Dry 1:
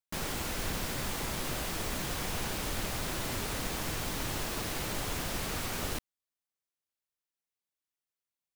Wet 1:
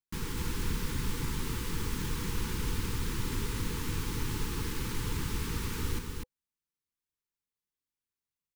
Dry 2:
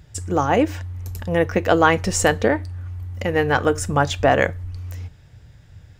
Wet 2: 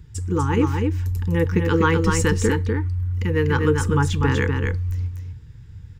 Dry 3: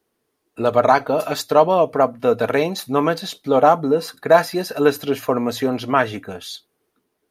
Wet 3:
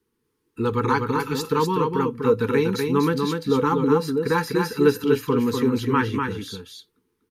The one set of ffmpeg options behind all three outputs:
ffmpeg -i in.wav -filter_complex "[0:a]asuperstop=centerf=650:order=20:qfactor=2,lowshelf=frequency=280:gain=10,asplit=2[link_01][link_02];[link_02]aecho=0:1:246:0.596[link_03];[link_01][link_03]amix=inputs=2:normalize=0,volume=-5dB" out.wav

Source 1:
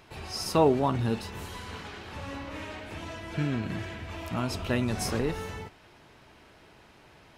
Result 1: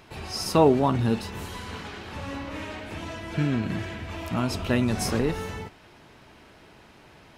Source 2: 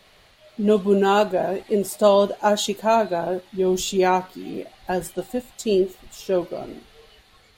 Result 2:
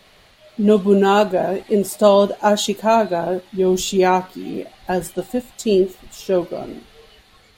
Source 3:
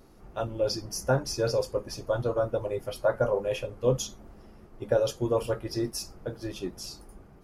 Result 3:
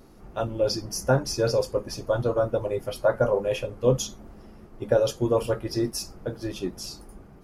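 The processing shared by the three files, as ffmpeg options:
ffmpeg -i in.wav -af "equalizer=frequency=220:width=1.4:gain=2.5,volume=3dB" out.wav

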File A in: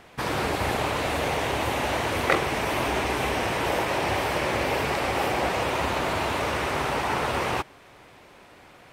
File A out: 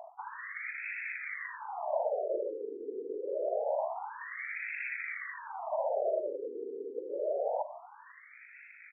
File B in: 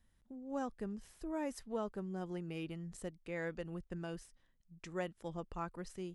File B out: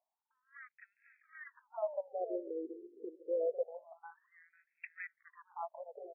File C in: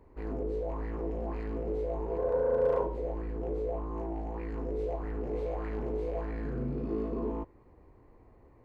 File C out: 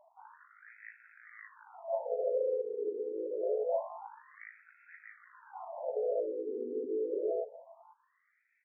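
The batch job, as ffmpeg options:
ffmpeg -i in.wav -filter_complex "[0:a]equalizer=frequency=570:width=1.4:gain=13,areverse,acompressor=threshold=-27dB:ratio=16,areverse,aexciter=amount=7.7:drive=4.7:freq=2000,tremolo=f=51:d=0.333,asplit=2[link_01][link_02];[link_02]adynamicsmooth=sensitivity=5:basefreq=760,volume=1.5dB[link_03];[link_01][link_03]amix=inputs=2:normalize=0,asoftclip=type=tanh:threshold=-19dB,highpass=frequency=220:width=0.5412,highpass=frequency=220:width=1.3066,equalizer=frequency=280:width_type=q:width=4:gain=-4,equalizer=frequency=410:width_type=q:width=4:gain=5,equalizer=frequency=630:width_type=q:width=4:gain=8,equalizer=frequency=900:width_type=q:width=4:gain=3,equalizer=frequency=1300:width_type=q:width=4:gain=-4,equalizer=frequency=1900:width_type=q:width=4:gain=5,lowpass=frequency=2600:width=0.5412,lowpass=frequency=2600:width=1.3066,aecho=1:1:496|992|1488|1984:0.178|0.0765|0.0329|0.0141,afftfilt=real='re*between(b*sr/1024,340*pow(1900/340,0.5+0.5*sin(2*PI*0.26*pts/sr))/1.41,340*pow(1900/340,0.5+0.5*sin(2*PI*0.26*pts/sr))*1.41)':imag='im*between(b*sr/1024,340*pow(1900/340,0.5+0.5*sin(2*PI*0.26*pts/sr))/1.41,340*pow(1900/340,0.5+0.5*sin(2*PI*0.26*pts/sr))*1.41)':win_size=1024:overlap=0.75,volume=-8dB" out.wav

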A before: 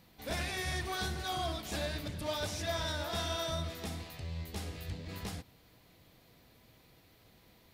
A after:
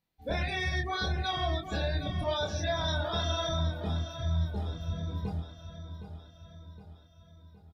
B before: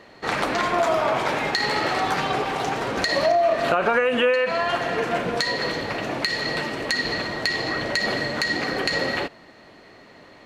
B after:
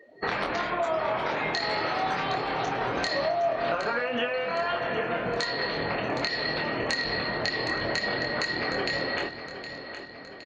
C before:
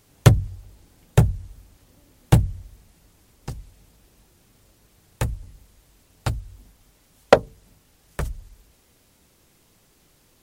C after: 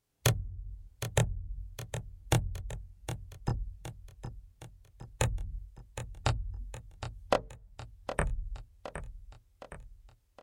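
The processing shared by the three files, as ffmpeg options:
ffmpeg -i in.wav -filter_complex "[0:a]afftdn=noise_reduction=30:noise_floor=-38,equalizer=frequency=260:width_type=o:width=1.1:gain=-3,acompressor=threshold=-36dB:ratio=5,asplit=2[link_01][link_02];[link_02]adelay=25,volume=-4dB[link_03];[link_01][link_03]amix=inputs=2:normalize=0,asplit=2[link_04][link_05];[link_05]aecho=0:1:765|1530|2295|3060|3825|4590:0.282|0.147|0.0762|0.0396|0.0206|0.0107[link_06];[link_04][link_06]amix=inputs=2:normalize=0,volume=7dB" out.wav

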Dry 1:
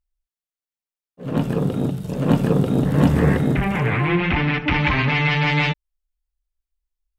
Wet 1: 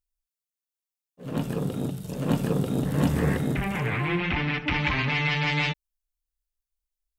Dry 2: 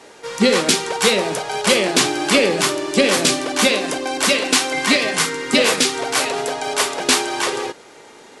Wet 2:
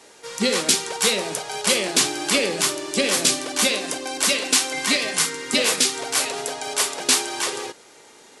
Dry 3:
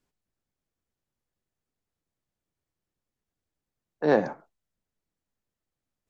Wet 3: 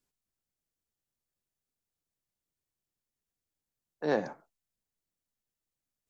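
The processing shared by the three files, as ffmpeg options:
ffmpeg -i in.wav -af "highshelf=frequency=4000:gain=10,volume=-7.5dB" out.wav

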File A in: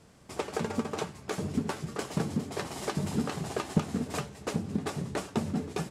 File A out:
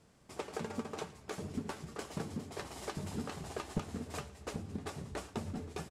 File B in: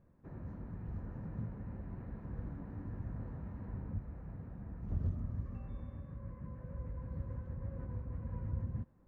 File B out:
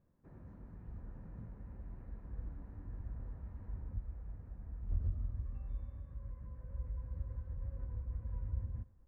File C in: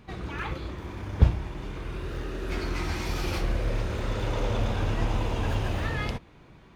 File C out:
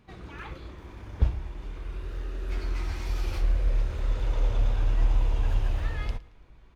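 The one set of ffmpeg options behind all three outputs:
ffmpeg -i in.wav -af "asubboost=boost=8:cutoff=57,aecho=1:1:112|224|336:0.0891|0.0348|0.0136,volume=-7.5dB" out.wav

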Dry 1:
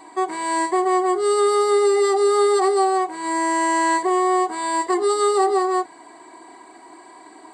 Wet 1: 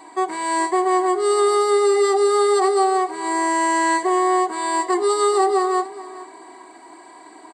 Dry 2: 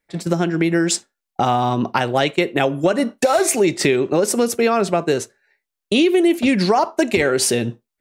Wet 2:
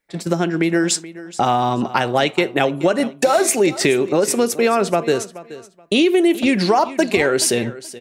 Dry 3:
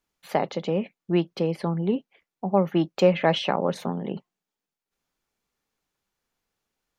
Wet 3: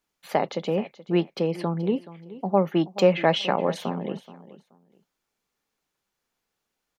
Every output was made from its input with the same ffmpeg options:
ffmpeg -i in.wav -filter_complex "[0:a]lowshelf=frequency=130:gain=-6.5,asplit=2[link_01][link_02];[link_02]aecho=0:1:427|854:0.141|0.0297[link_03];[link_01][link_03]amix=inputs=2:normalize=0,volume=1dB" out.wav

